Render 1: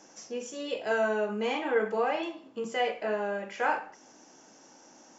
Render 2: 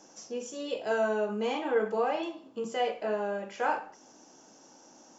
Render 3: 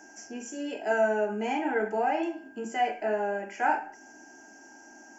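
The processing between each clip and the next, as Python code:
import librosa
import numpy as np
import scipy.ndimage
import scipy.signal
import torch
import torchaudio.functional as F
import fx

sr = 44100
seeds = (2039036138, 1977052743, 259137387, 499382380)

y1 = fx.peak_eq(x, sr, hz=2000.0, db=-6.5, octaves=0.81)
y2 = fx.fixed_phaser(y1, sr, hz=760.0, stages=8)
y2 = y2 + 10.0 ** (-58.0 / 20.0) * np.sin(2.0 * np.pi * 1600.0 * np.arange(len(y2)) / sr)
y2 = y2 * librosa.db_to_amplitude(5.5)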